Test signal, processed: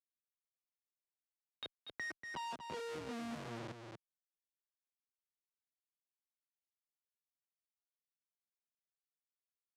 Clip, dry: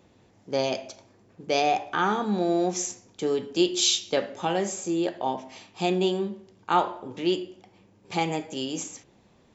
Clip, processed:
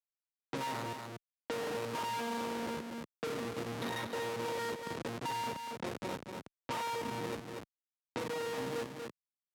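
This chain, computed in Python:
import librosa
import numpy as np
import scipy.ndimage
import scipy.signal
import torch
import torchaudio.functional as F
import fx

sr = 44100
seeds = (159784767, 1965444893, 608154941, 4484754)

p1 = np.where(x < 0.0, 10.0 ** (-12.0 / 20.0) * x, x)
p2 = fx.peak_eq(p1, sr, hz=1300.0, db=10.5, octaves=0.68)
p3 = fx.octave_resonator(p2, sr, note='A#', decay_s=0.76)
p4 = fx.rev_schroeder(p3, sr, rt60_s=2.1, comb_ms=30, drr_db=14.0)
p5 = fx.schmitt(p4, sr, flips_db=-55.0)
p6 = scipy.signal.sosfilt(scipy.signal.butter(2, 190.0, 'highpass', fs=sr, output='sos'), p5)
p7 = fx.high_shelf(p6, sr, hz=6500.0, db=-5.5)
p8 = fx.env_lowpass(p7, sr, base_hz=2900.0, full_db=-53.0)
p9 = p8 + fx.echo_single(p8, sr, ms=238, db=-8.0, dry=0)
p10 = fx.band_squash(p9, sr, depth_pct=70)
y = F.gain(torch.from_numpy(p10), 16.5).numpy()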